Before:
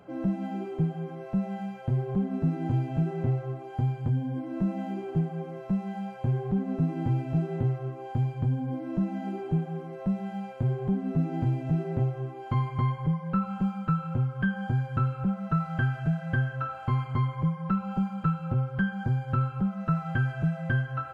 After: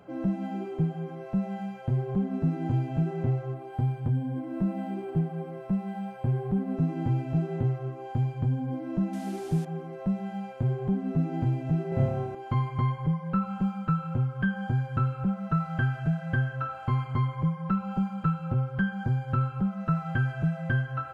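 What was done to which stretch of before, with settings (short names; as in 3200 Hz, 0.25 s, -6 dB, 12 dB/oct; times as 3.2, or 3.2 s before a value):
3.54–6.77 decimation joined by straight lines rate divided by 4×
9.13–9.65 delta modulation 64 kbps, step -42 dBFS
11.89–12.35 flutter echo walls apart 4.9 m, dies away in 1.1 s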